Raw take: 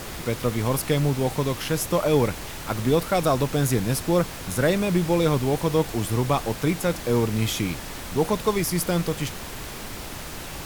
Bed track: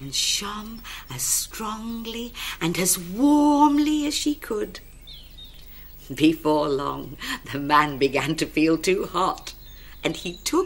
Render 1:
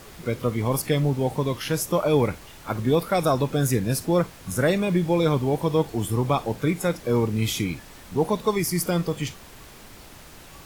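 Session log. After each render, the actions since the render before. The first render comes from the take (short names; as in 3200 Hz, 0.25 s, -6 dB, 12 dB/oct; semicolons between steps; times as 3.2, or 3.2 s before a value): noise print and reduce 10 dB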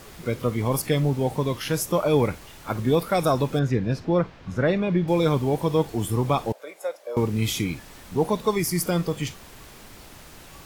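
3.59–5.08 air absorption 210 m; 6.52–7.17 ladder high-pass 540 Hz, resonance 70%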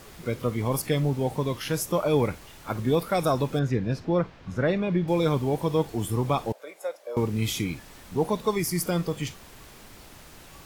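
gain -2.5 dB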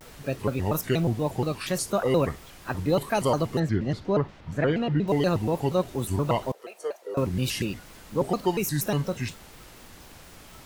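shaped vibrato square 4.2 Hz, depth 250 cents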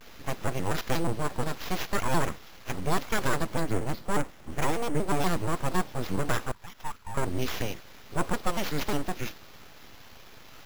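sample-and-hold 5×; full-wave rectifier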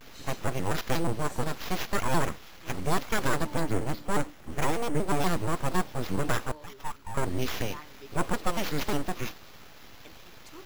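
add bed track -28 dB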